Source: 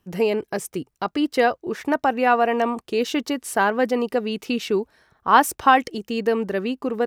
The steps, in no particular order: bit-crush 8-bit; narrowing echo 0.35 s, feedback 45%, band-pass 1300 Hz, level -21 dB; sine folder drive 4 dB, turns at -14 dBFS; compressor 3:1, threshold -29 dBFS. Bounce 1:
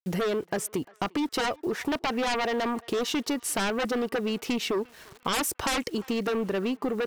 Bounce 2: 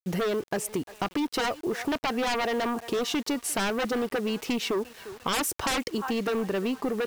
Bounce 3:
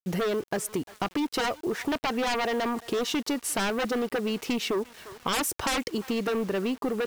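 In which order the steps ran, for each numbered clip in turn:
sine folder > bit-crush > compressor > narrowing echo; narrowing echo > sine folder > compressor > bit-crush; sine folder > narrowing echo > compressor > bit-crush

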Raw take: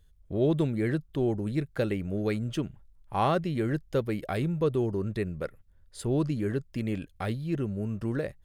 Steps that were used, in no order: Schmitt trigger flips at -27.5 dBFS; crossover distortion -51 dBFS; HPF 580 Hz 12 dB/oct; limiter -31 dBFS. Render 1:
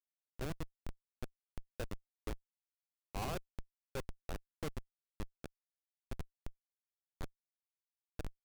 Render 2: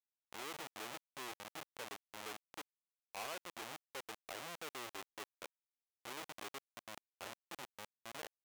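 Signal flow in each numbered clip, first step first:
crossover distortion > HPF > Schmitt trigger > limiter; Schmitt trigger > HPF > limiter > crossover distortion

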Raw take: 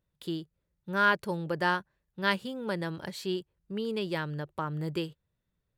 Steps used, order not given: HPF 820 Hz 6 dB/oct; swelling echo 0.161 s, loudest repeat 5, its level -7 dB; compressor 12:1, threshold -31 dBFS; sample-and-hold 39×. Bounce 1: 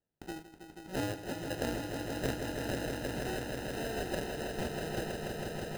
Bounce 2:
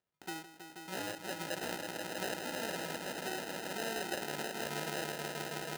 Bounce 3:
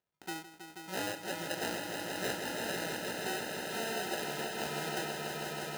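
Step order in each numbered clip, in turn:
HPF > sample-and-hold > compressor > swelling echo; compressor > swelling echo > sample-and-hold > HPF; sample-and-hold > HPF > compressor > swelling echo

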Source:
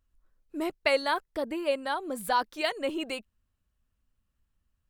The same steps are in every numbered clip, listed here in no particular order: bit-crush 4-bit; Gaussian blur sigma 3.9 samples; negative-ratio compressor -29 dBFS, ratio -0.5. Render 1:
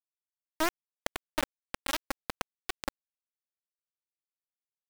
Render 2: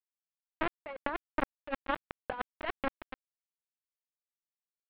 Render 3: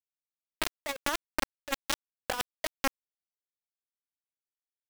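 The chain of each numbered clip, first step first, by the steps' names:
negative-ratio compressor > Gaussian blur > bit-crush; bit-crush > negative-ratio compressor > Gaussian blur; Gaussian blur > bit-crush > negative-ratio compressor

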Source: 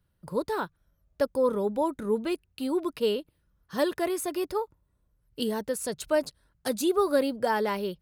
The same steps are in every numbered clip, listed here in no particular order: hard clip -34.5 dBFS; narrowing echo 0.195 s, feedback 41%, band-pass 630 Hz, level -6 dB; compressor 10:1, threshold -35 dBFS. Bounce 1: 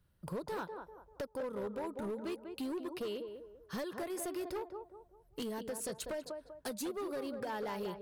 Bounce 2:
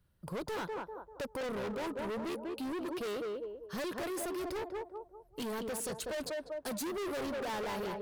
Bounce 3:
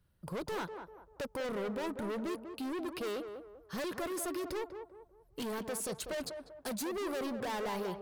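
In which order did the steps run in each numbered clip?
compressor > narrowing echo > hard clip; narrowing echo > hard clip > compressor; hard clip > compressor > narrowing echo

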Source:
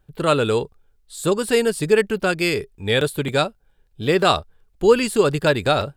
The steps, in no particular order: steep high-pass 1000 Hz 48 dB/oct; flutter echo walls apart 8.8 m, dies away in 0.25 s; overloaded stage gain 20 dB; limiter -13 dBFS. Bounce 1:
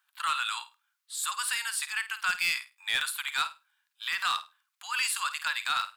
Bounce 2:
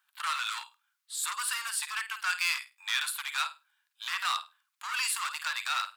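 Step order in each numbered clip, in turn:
limiter > steep high-pass > overloaded stage > flutter echo; limiter > flutter echo > overloaded stage > steep high-pass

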